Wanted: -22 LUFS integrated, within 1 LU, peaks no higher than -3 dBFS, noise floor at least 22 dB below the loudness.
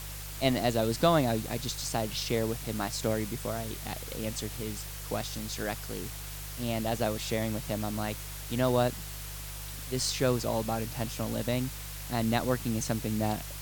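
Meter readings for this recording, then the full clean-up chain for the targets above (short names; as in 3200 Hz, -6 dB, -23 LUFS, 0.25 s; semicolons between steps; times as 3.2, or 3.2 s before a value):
hum 50 Hz; harmonics up to 150 Hz; hum level -40 dBFS; noise floor -40 dBFS; noise floor target -54 dBFS; loudness -31.5 LUFS; peak -11.0 dBFS; loudness target -22.0 LUFS
-> de-hum 50 Hz, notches 3; denoiser 14 dB, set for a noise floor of -40 dBFS; gain +9.5 dB; limiter -3 dBFS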